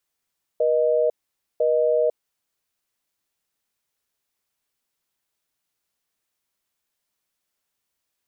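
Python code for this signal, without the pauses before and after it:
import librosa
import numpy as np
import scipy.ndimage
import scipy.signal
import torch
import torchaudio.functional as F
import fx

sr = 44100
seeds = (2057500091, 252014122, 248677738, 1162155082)

y = fx.call_progress(sr, length_s=1.64, kind='busy tone', level_db=-19.5)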